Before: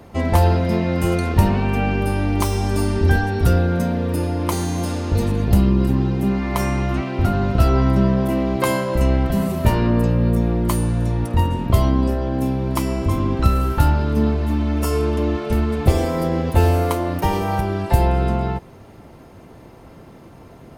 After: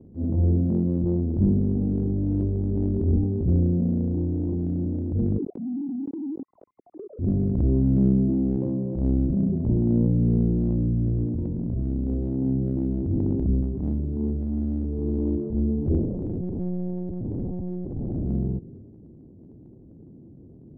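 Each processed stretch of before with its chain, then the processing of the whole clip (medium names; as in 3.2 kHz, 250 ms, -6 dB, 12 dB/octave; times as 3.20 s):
5.38–7.19 s: formants replaced by sine waves + compression 8:1, threshold -26 dBFS
11.29–12.07 s: doubling 17 ms -7.5 dB + compression 2.5:1, threshold -20 dBFS
13.61–14.99 s: high-pass 41 Hz + transformer saturation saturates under 590 Hz
15.99–18.25 s: compression, threshold -18 dBFS + filtered feedback delay 187 ms, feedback 56%, low-pass 2.2 kHz, level -11 dB + monotone LPC vocoder at 8 kHz 180 Hz
whole clip: inverse Chebyshev low-pass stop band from 1.5 kHz, stop band 70 dB; bass shelf 63 Hz -11.5 dB; transient shaper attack -10 dB, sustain +5 dB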